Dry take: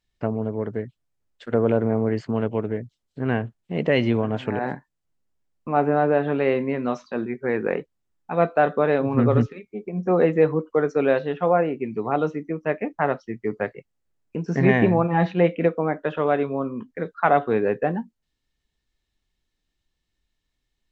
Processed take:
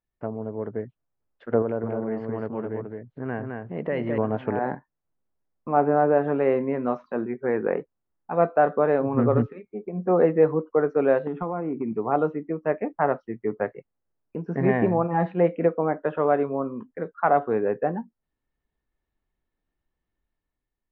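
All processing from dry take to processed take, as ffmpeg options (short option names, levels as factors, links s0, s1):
-filter_complex "[0:a]asettb=1/sr,asplit=3[s0][s1][s2];[s0]atrim=end=1.624[s3];[s1]atrim=start=1.62:end=4.18,asetpts=PTS-STARTPTS,afade=t=in:d=0.004:c=qsin,afade=t=out:st=2.556:d=0.004:c=qsin,equalizer=f=1800:w=2.1:g=3.5,acompressor=threshold=0.02:ratio=1.5:attack=3.2:release=140:knee=1:detection=peak,aecho=1:1:212:0.631,atrim=end_sample=112896[s4];[s2]atrim=start=4.176[s5];[s3][s4]acrossfade=d=0.004:c1=hsin:c2=qsin[s6];[s6][s5]acrossfade=d=0.004:c1=qsin:c2=hsin,asettb=1/sr,asplit=3[s7][s8][s9];[s7]atrim=end=11.274[s10];[s8]atrim=start=11.27:end=11.93,asetpts=PTS-STARTPTS,afade=t=in:d=0.004:c=qsin,afade=t=out:st=0.656:d=0.004:c=qsin,equalizer=f=280:w=0.68:g=9,acompressor=threshold=0.0631:ratio=4:attack=3.2:release=140:knee=1:detection=peak,aecho=1:1:0.9:0.57,atrim=end_sample=29106[s11];[s9]atrim=start=11.926[s12];[s10][s11]acrossfade=d=0.004:c1=hsin:c2=qsin[s13];[s13][s12]acrossfade=d=0.004:c1=qsin:c2=hsin,lowshelf=f=290:g=-6.5,dynaudnorm=f=200:g=7:m=2,lowpass=1300,volume=0.668"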